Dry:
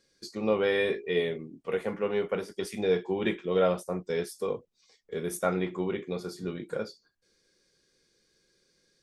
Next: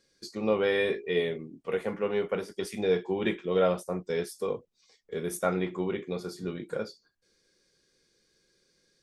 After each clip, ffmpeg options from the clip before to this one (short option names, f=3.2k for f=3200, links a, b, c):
-af anull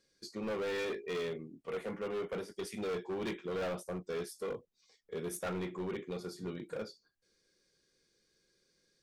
-af "volume=28.5dB,asoftclip=hard,volume=-28.5dB,volume=-5dB"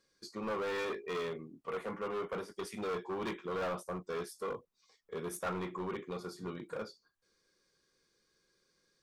-af "equalizer=f=1.1k:t=o:w=0.74:g=9.5,volume=-1.5dB"